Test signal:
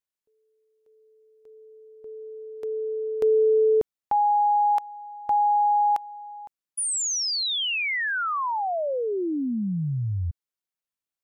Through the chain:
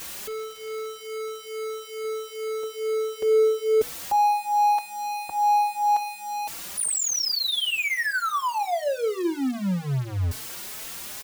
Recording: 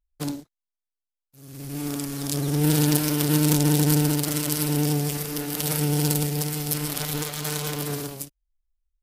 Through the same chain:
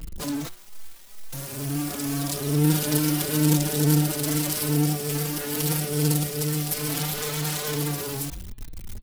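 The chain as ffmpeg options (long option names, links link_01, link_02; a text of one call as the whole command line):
ffmpeg -i in.wav -filter_complex "[0:a]aeval=exprs='val(0)+0.5*0.0562*sgn(val(0))':channel_layout=same,bandreject=frequency=121.1:width_type=h:width=4,bandreject=frequency=242.2:width_type=h:width=4,bandreject=frequency=363.3:width_type=h:width=4,bandreject=frequency=484.4:width_type=h:width=4,bandreject=frequency=605.5:width_type=h:width=4,bandreject=frequency=726.6:width_type=h:width=4,bandreject=frequency=847.7:width_type=h:width=4,bandreject=frequency=968.8:width_type=h:width=4,bandreject=frequency=1089.9:width_type=h:width=4,bandreject=frequency=1211:width_type=h:width=4,bandreject=frequency=1332.1:width_type=h:width=4,bandreject=frequency=1453.2:width_type=h:width=4,bandreject=frequency=1574.3:width_type=h:width=4,bandreject=frequency=1695.4:width_type=h:width=4,bandreject=frequency=1816.5:width_type=h:width=4,bandreject=frequency=1937.6:width_type=h:width=4,bandreject=frequency=2058.7:width_type=h:width=4,bandreject=frequency=2179.8:width_type=h:width=4,bandreject=frequency=2300.9:width_type=h:width=4,bandreject=frequency=2422:width_type=h:width=4,bandreject=frequency=2543.1:width_type=h:width=4,bandreject=frequency=2664.2:width_type=h:width=4,bandreject=frequency=2785.3:width_type=h:width=4,bandreject=frequency=2906.4:width_type=h:width=4,bandreject=frequency=3027.5:width_type=h:width=4,bandreject=frequency=3148.6:width_type=h:width=4,bandreject=frequency=3269.7:width_type=h:width=4,bandreject=frequency=3390.8:width_type=h:width=4,bandreject=frequency=3511.9:width_type=h:width=4,bandreject=frequency=3633:width_type=h:width=4,bandreject=frequency=3754.1:width_type=h:width=4,bandreject=frequency=3875.2:width_type=h:width=4,bandreject=frequency=3996.3:width_type=h:width=4,bandreject=frequency=4117.4:width_type=h:width=4,bandreject=frequency=4238.5:width_type=h:width=4,bandreject=frequency=4359.6:width_type=h:width=4,asplit=2[link_01][link_02];[link_02]adelay=4,afreqshift=2.3[link_03];[link_01][link_03]amix=inputs=2:normalize=1" out.wav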